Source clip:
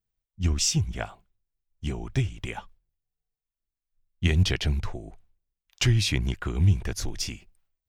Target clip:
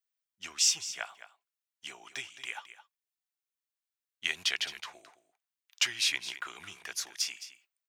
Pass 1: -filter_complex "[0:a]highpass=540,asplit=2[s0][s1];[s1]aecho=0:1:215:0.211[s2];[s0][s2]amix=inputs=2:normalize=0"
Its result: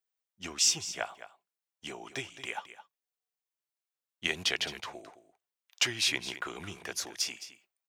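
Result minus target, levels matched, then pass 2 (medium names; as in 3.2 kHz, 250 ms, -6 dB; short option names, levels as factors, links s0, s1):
500 Hz band +11.5 dB
-filter_complex "[0:a]highpass=1200,asplit=2[s0][s1];[s1]aecho=0:1:215:0.211[s2];[s0][s2]amix=inputs=2:normalize=0"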